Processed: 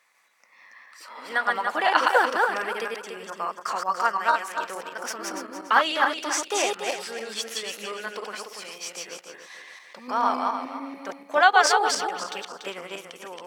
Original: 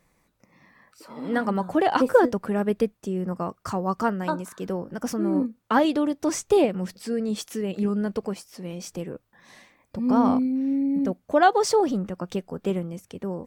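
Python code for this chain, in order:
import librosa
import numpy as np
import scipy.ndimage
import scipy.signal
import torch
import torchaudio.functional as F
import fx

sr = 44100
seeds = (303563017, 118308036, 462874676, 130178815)

y = fx.reverse_delay_fb(x, sr, ms=144, feedback_pct=53, wet_db=-1.5)
y = scipy.signal.sosfilt(scipy.signal.butter(2, 1300.0, 'highpass', fs=sr, output='sos'), y)
y = fx.high_shelf(y, sr, hz=6400.0, db=-11.0)
y = y * 10.0 ** (8.5 / 20.0)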